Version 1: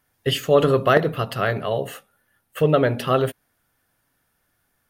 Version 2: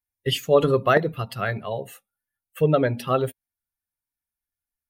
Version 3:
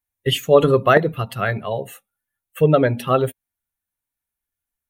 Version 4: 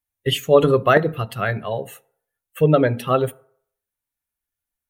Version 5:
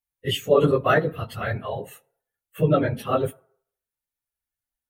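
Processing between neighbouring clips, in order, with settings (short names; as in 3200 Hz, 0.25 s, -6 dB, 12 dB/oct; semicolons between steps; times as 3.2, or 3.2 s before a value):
per-bin expansion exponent 1.5
bell 4900 Hz -11 dB 0.27 oct; gain +4.5 dB
FDN reverb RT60 0.62 s, low-frequency decay 0.75×, high-frequency decay 0.5×, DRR 18.5 dB; gain -1 dB
phase scrambler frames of 50 ms; gain -4.5 dB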